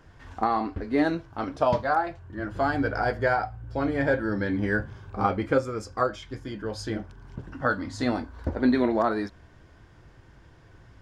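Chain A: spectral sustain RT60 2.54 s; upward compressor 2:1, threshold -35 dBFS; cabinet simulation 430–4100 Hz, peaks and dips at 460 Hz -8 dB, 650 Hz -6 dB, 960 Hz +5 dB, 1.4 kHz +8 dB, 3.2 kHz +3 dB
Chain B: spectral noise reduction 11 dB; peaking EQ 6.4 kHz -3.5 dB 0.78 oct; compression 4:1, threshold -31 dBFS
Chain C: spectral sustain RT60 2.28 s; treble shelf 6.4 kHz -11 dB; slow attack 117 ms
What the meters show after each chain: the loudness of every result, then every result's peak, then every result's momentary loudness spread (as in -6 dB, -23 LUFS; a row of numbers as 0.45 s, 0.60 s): -21.5 LUFS, -35.5 LUFS, -23.0 LUFS; -5.5 dBFS, -16.5 dBFS, -7.0 dBFS; 13 LU, 7 LU, 10 LU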